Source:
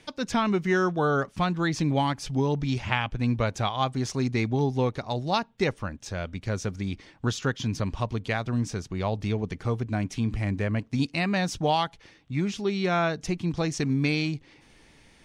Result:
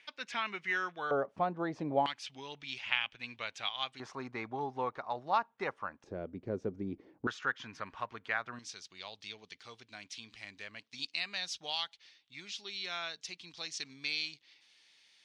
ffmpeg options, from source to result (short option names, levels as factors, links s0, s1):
-af "asetnsamples=n=441:p=0,asendcmd='1.11 bandpass f 620;2.06 bandpass f 2900;4 bandpass f 1100;6.04 bandpass f 370;7.27 bandpass f 1500;8.59 bandpass f 4000',bandpass=f=2300:t=q:w=1.8:csg=0"